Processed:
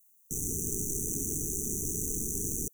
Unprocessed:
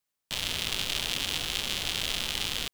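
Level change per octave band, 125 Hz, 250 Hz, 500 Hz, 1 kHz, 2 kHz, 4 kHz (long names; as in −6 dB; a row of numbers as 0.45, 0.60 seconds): +4.5 dB, +6.5 dB, +2.5 dB, below −40 dB, below −40 dB, below −40 dB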